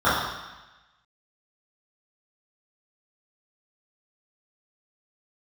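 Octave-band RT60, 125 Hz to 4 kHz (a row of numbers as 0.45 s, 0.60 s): 1.1 s, 1.1 s, 1.0 s, 1.1 s, 1.2 s, 1.2 s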